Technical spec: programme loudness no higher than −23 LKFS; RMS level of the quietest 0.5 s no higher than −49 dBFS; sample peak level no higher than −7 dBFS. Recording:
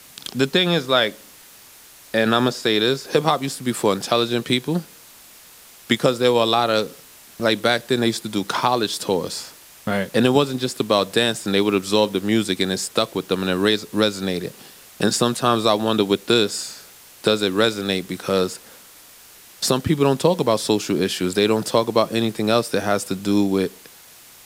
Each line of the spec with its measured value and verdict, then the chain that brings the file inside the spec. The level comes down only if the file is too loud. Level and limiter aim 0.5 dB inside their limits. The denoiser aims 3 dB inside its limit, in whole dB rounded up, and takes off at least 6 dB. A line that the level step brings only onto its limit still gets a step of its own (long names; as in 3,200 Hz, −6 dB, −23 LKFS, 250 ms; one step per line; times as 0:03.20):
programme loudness −20.5 LKFS: out of spec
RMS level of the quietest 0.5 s −46 dBFS: out of spec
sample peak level −3.5 dBFS: out of spec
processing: broadband denoise 6 dB, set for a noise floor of −46 dBFS
level −3 dB
brickwall limiter −7.5 dBFS